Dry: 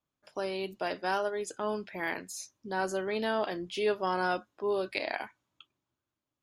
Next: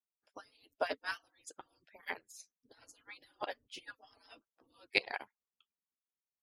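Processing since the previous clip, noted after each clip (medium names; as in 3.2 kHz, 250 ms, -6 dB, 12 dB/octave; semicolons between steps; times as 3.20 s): harmonic-percussive separation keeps percussive; upward expansion 2.5:1, over -46 dBFS; trim +6 dB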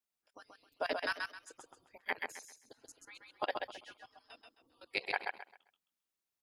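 level held to a coarse grid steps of 20 dB; feedback delay 132 ms, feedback 26%, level -4 dB; trim +7 dB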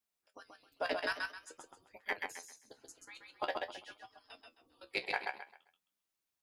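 in parallel at -8 dB: saturation -34 dBFS, distortion -7 dB; on the sum: flange 0.49 Hz, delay 9 ms, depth 7.2 ms, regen +53%; trim +2.5 dB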